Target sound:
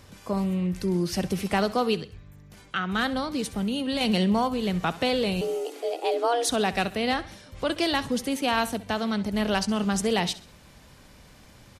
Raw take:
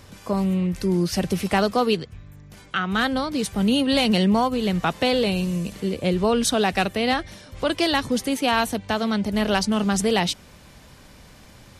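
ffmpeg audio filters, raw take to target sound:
-filter_complex "[0:a]asettb=1/sr,asplit=3[a][b][c];[a]atrim=end=3.404[d];[b]atrim=start=3.4:end=4.01,asetpts=PTS-STARTPTS,afade=t=in:d=0.004:c=qsin,afade=t=out:st=0.606:d=0.004:c=qsin,acompressor=threshold=-21dB:ratio=6[e];[c]atrim=start=4.006[f];[d][e]acrossfade=d=0.004:c1=hsin:c2=qsin[g];[g][f]acrossfade=d=0.004:c1=qsin:c2=hsin,asettb=1/sr,asplit=3[h][i][j];[h]atrim=end=5.414[k];[i]atrim=start=5.41:end=6.49,asetpts=PTS-STARTPTS,afade=t=in:d=0.004:c=qsin,afade=t=out:st=1.076:d=0.004:c=qsin,afreqshift=240[l];[j]atrim=start=6.486[m];[k][l]acrossfade=d=0.004:c1=hsin:c2=qsin[n];[n][m]acrossfade=d=0.004:c1=qsin:c2=hsin,aecho=1:1:66|132|198:0.141|0.0537|0.0204,volume=-4dB"

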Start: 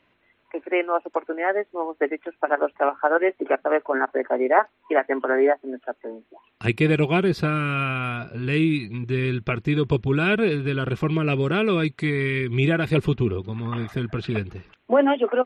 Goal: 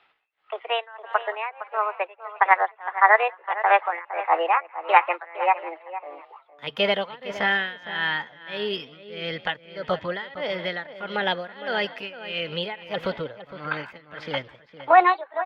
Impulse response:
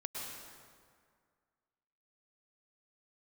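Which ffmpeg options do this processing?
-filter_complex "[0:a]acrossover=split=540 2200:gain=0.1 1 0.112[a][b][c];[a][b][c]amix=inputs=3:normalize=0,asplit=2[d][e];[e]asplit=5[f][g][h][i][j];[f]adelay=175,afreqshift=38,volume=-21dB[k];[g]adelay=350,afreqshift=76,volume=-25.4dB[l];[h]adelay=525,afreqshift=114,volume=-29.9dB[m];[i]adelay=700,afreqshift=152,volume=-34.3dB[n];[j]adelay=875,afreqshift=190,volume=-38.7dB[o];[k][l][m][n][o]amix=inputs=5:normalize=0[p];[d][p]amix=inputs=2:normalize=0,tremolo=f=1.6:d=0.96,asetrate=57191,aresample=44100,atempo=0.771105,asplit=2[q][r];[r]adelay=460.6,volume=-13dB,highshelf=f=4k:g=-10.4[s];[q][s]amix=inputs=2:normalize=0,volume=8dB"

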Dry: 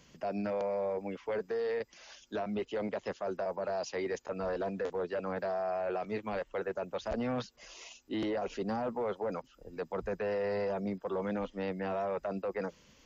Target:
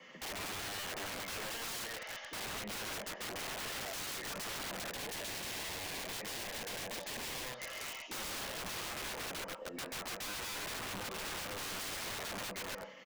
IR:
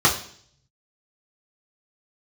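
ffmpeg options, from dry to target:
-filter_complex "[0:a]acrossover=split=470 3300:gain=0.141 1 0.224[a][b][c];[a][b][c]amix=inputs=3:normalize=0,asoftclip=type=tanh:threshold=-31dB,highpass=f=140:w=0.5412,highpass=f=140:w=1.3066[d];[1:a]atrim=start_sample=2205,asetrate=70560,aresample=44100[e];[d][e]afir=irnorm=-1:irlink=0,acompressor=threshold=-30dB:ratio=6,aeval=exprs='0.0891*(cos(1*acos(clip(val(0)/0.0891,-1,1)))-cos(1*PI/2))+0.0126*(cos(2*acos(clip(val(0)/0.0891,-1,1)))-cos(2*PI/2))+0.00631*(cos(3*acos(clip(val(0)/0.0891,-1,1)))-cos(3*PI/2))':c=same,aecho=1:1:135:0.596,aeval=exprs='(mod(47.3*val(0)+1,2)-1)/47.3':c=same,asettb=1/sr,asplit=3[f][g][h];[f]atrim=end=4.904[i];[g]atrim=start=4.9:end=7.58,asetpts=PTS-STARTPTS,afade=t=in:d=0.004:c=qsin,afade=t=out:st=2.676:d=0.004:c=qsin,equalizer=f=1.3k:t=o:w=0.3:g=-8[j];[h]atrim=start=7.576[k];[i][j]acrossfade=d=0.004:c1=hsin:c2=qsin[l];[l][k]acrossfade=d=0.004:c1=qsin:c2=hsin,volume=-3dB"

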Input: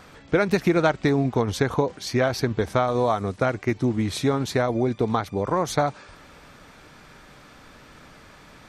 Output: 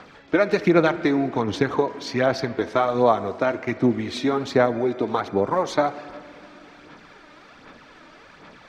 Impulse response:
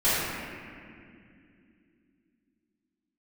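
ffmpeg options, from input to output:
-filter_complex "[0:a]acrossover=split=170 6000:gain=0.224 1 0.0891[a][b][c];[a][b][c]amix=inputs=3:normalize=0,aphaser=in_gain=1:out_gain=1:delay=3.3:decay=0.48:speed=1.3:type=sinusoidal,asplit=2[d][e];[1:a]atrim=start_sample=2205,lowpass=3.7k,lowshelf=f=160:g=-11.5[f];[e][f]afir=irnorm=-1:irlink=0,volume=-28dB[g];[d][g]amix=inputs=2:normalize=0"

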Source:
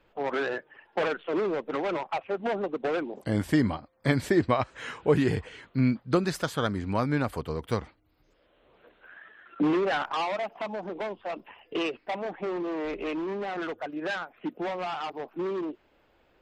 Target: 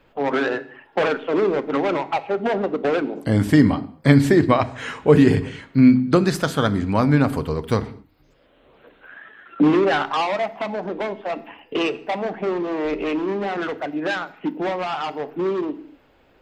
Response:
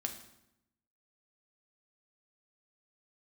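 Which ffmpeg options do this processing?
-filter_complex "[0:a]asplit=2[a][b];[b]equalizer=f=180:w=0.79:g=6.5[c];[1:a]atrim=start_sample=2205,afade=t=out:st=0.35:d=0.01,atrim=end_sample=15876,asetrate=52920,aresample=44100[d];[c][d]afir=irnorm=-1:irlink=0,volume=-2dB[e];[a][e]amix=inputs=2:normalize=0,volume=3dB"

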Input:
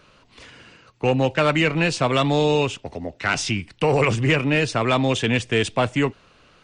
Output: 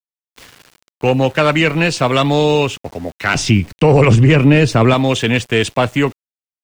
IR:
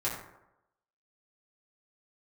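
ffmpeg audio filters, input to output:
-filter_complex "[0:a]asettb=1/sr,asplit=3[a][b][c];[a]atrim=end=3.354[d];[b]atrim=start=3.35:end=4.94,asetpts=PTS-STARTPTS,afade=t=in:d=0.004:c=qsin,afade=t=out:st=1.586:d=0.004:c=qsin,lowshelf=f=460:g=9.5[e];[c]atrim=start=4.936[f];[d][e]acrossfade=d=0.004:c1=hsin:c2=qsin[g];[g][f]acrossfade=d=0.004:c1=qsin:c2=hsin,aeval=exprs='val(0)*gte(abs(val(0)),0.00891)':c=same,alimiter=level_in=6.5dB:limit=-1dB:release=50:level=0:latency=1,volume=-1dB"

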